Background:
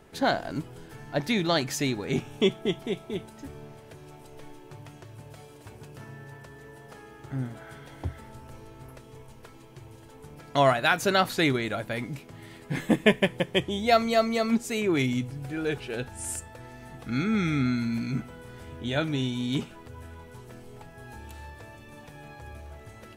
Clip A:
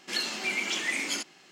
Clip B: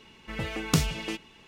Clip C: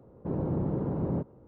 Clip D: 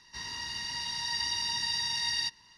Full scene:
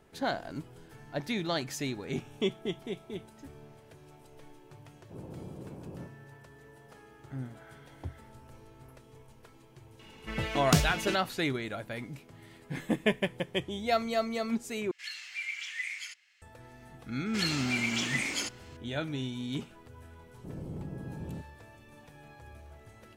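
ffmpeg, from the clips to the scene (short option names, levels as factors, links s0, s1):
-filter_complex "[3:a]asplit=2[s0][s1];[1:a]asplit=2[s2][s3];[0:a]volume=0.447[s4];[s0]bandreject=f=50:t=h:w=6,bandreject=f=100:t=h:w=6,bandreject=f=150:t=h:w=6,bandreject=f=200:t=h:w=6,bandreject=f=250:t=h:w=6,bandreject=f=300:t=h:w=6[s5];[s2]highpass=f=2000:t=q:w=2.8[s6];[s1]lowshelf=f=250:g=9[s7];[s4]asplit=2[s8][s9];[s8]atrim=end=14.914[s10];[s6]atrim=end=1.51,asetpts=PTS-STARTPTS,volume=0.2[s11];[s9]atrim=start=16.416[s12];[s5]atrim=end=1.47,asetpts=PTS-STARTPTS,volume=0.211,afade=t=in:d=0.004:c=hsin,afade=t=out:st=1.466:d=0.004:c=hsin,adelay=213885S[s13];[2:a]atrim=end=1.47,asetpts=PTS-STARTPTS,volume=0.944,afade=t=in:d=0.004:c=hsin,afade=t=out:st=1.466:d=0.004:c=hsin,adelay=9990[s14];[s3]atrim=end=1.51,asetpts=PTS-STARTPTS,volume=0.794,afade=t=in:d=0.004:c=hsin,afade=t=out:st=1.506:d=0.004:c=hsin,adelay=17260[s15];[s7]atrim=end=1.47,asetpts=PTS-STARTPTS,volume=0.158,afade=t=in:d=0.004:c=hsin,afade=t=out:st=1.466:d=0.004:c=hsin,adelay=20190[s16];[s10][s11]acrossfade=d=0.004:c1=hsin:c2=hsin[s17];[s17][s12]acrossfade=d=0.004:c1=hsin:c2=hsin[s18];[s18][s13][s14][s15][s16]amix=inputs=5:normalize=0"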